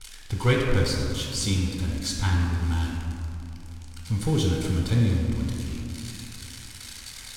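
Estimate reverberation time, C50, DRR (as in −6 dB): 2.9 s, 0.5 dB, −2.0 dB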